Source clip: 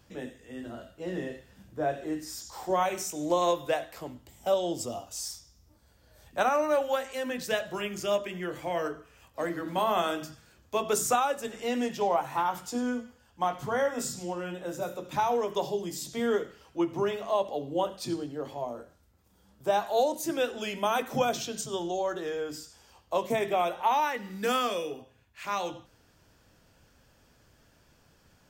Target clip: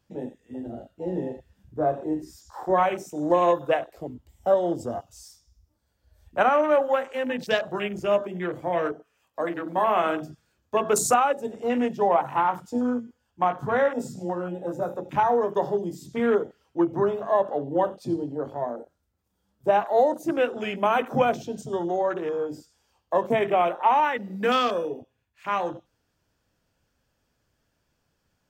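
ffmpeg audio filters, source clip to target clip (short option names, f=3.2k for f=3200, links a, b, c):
-filter_complex "[0:a]afwtdn=0.0126,asettb=1/sr,asplit=3[a][b][c];[a]atrim=end=8.924[d];[b]atrim=start=8.92:end=10.04,asetpts=PTS-STARTPTS,afade=t=in:d=0.004:c=qsin,afade=t=out:st=1.116:d=0.004:c=qsin,highpass=f=300:p=1[e];[c]atrim=start=10.036[f];[d][e]acrossfade=d=0.004:c1=hsin:c2=qsin[g];[g][f]acrossfade=d=0.004:c1=qsin:c2=hsin,volume=5.5dB"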